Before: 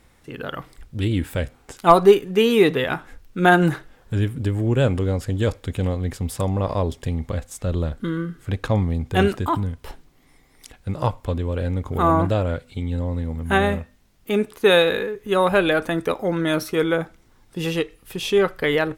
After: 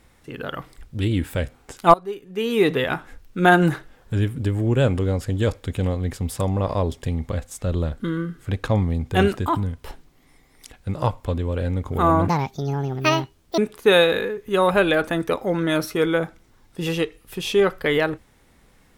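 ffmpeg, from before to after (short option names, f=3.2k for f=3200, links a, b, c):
-filter_complex "[0:a]asplit=4[a][b][c][d];[a]atrim=end=1.94,asetpts=PTS-STARTPTS,afade=t=out:st=1.936:d=0.004:c=hsin:silence=0.0891251[e];[b]atrim=start=1.94:end=12.284,asetpts=PTS-STARTPTS,afade=t=in:d=0.8:c=qua:silence=0.0891251[f];[c]atrim=start=12.28:end=14.36,asetpts=PTS-STARTPTS,asetrate=70560,aresample=44100[g];[d]atrim=start=14.356[h];[e][f]concat=n=2:v=0:a=1[i];[i][g]acrossfade=d=0.004:c1=hsin:c2=hsin[j];[j][h]acrossfade=d=0.004:c1=hsin:c2=hsin"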